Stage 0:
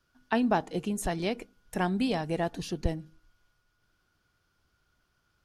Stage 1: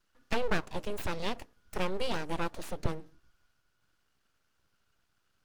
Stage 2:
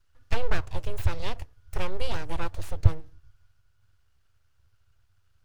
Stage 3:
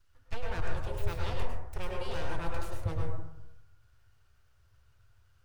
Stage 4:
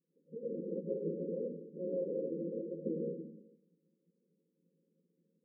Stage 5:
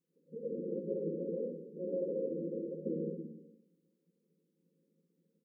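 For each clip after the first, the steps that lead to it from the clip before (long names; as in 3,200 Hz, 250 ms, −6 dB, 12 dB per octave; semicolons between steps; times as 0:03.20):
full-wave rectification; level −1 dB
low shelf with overshoot 140 Hz +12 dB, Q 3
reversed playback; downward compressor 10 to 1, threshold −25 dBFS, peak gain reduction 16.5 dB; reversed playback; dense smooth reverb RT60 0.86 s, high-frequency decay 0.3×, pre-delay 90 ms, DRR −1.5 dB
lower of the sound and its delayed copy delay 9 ms; brick-wall band-pass 160–550 Hz; level +6.5 dB
repeating echo 62 ms, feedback 60%, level −9 dB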